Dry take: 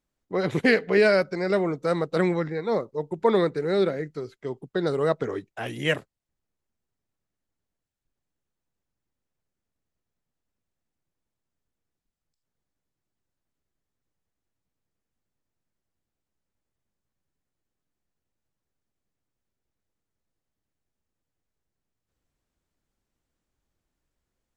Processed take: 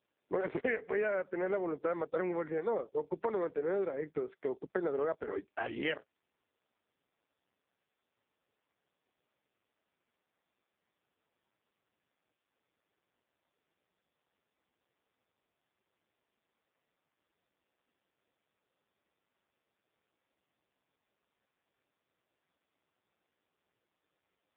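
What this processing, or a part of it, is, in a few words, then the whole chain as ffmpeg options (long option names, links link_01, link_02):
voicemail: -af "highpass=330,lowpass=2600,acompressor=threshold=-35dB:ratio=6,volume=4.5dB" -ar 8000 -c:a libopencore_amrnb -b:a 5150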